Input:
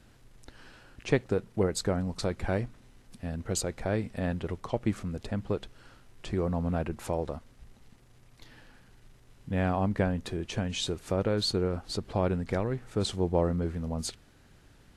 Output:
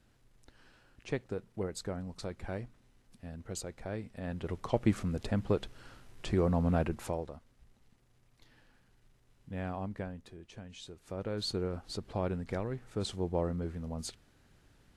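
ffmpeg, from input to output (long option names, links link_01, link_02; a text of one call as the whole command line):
ffmpeg -i in.wav -af "volume=11.5dB,afade=type=in:start_time=4.23:duration=0.55:silence=0.298538,afade=type=out:start_time=6.82:duration=0.48:silence=0.281838,afade=type=out:start_time=9.77:duration=0.54:silence=0.473151,afade=type=in:start_time=10.95:duration=0.58:silence=0.298538" out.wav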